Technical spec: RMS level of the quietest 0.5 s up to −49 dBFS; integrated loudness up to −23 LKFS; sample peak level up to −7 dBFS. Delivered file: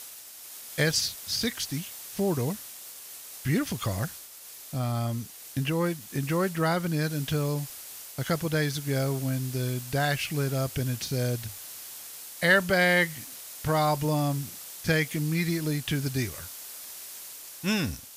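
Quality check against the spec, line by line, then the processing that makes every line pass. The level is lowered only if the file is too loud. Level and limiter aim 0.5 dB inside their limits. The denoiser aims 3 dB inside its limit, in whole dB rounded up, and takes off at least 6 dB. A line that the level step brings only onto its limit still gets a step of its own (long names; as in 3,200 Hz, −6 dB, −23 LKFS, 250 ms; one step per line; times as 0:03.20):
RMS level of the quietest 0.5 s −46 dBFS: out of spec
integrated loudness −28.5 LKFS: in spec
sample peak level −9.0 dBFS: in spec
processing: broadband denoise 6 dB, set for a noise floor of −46 dBFS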